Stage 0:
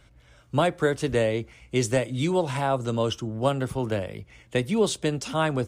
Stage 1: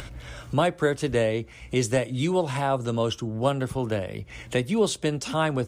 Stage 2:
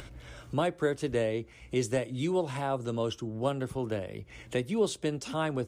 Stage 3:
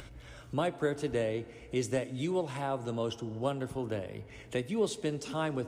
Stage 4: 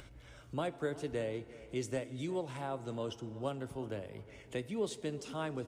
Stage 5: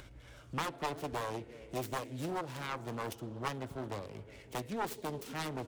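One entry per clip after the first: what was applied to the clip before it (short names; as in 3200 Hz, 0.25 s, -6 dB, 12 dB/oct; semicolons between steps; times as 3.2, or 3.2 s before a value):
upward compressor, threshold -25 dBFS
bell 360 Hz +4 dB 0.93 oct; gain -7.5 dB
reverb RT60 3.0 s, pre-delay 4 ms, DRR 14.5 dB; gain -2.5 dB
feedback echo 0.359 s, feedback 43%, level -19.5 dB; gain -5.5 dB
self-modulated delay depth 0.92 ms; gain +1 dB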